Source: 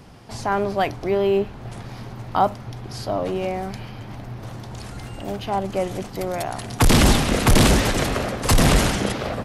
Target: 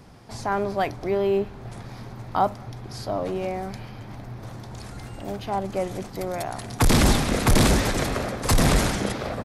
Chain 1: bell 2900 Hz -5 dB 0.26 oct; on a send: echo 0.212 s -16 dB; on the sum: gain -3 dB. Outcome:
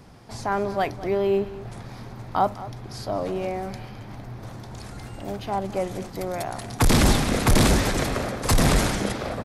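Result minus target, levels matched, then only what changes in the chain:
echo-to-direct +11.5 dB
change: echo 0.212 s -27.5 dB

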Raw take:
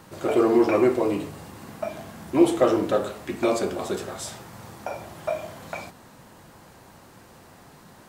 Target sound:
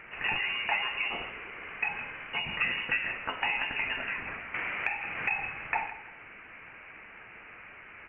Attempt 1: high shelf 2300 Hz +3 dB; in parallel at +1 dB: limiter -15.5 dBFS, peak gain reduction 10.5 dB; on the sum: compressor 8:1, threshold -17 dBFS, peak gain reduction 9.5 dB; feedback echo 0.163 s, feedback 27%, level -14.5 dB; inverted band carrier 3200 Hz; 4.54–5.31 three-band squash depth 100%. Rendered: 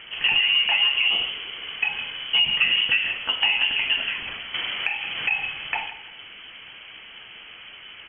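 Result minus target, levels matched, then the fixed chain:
1000 Hz band -10.0 dB
high shelf 2300 Hz +3 dB; in parallel at +1 dB: limiter -15.5 dBFS, peak gain reduction 10.5 dB; on the sum: compressor 8:1, threshold -17 dBFS, peak gain reduction 9.5 dB; HPF 950 Hz 12 dB/oct; feedback echo 0.163 s, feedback 27%, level -14.5 dB; inverted band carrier 3200 Hz; 4.54–5.31 three-band squash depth 100%

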